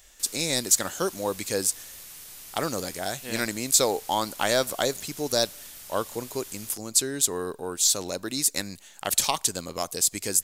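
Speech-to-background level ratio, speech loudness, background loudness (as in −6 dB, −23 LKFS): 15.5 dB, −26.0 LKFS, −41.5 LKFS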